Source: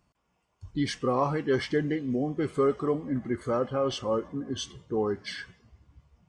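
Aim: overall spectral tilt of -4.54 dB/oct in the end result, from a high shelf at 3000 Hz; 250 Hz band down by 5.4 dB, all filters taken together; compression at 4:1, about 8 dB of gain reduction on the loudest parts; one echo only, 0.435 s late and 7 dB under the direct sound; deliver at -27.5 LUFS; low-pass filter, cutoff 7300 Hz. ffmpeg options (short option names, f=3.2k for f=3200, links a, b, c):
-af "lowpass=7.3k,equalizer=f=250:t=o:g=-7,highshelf=f=3k:g=6.5,acompressor=threshold=-32dB:ratio=4,aecho=1:1:435:0.447,volume=8.5dB"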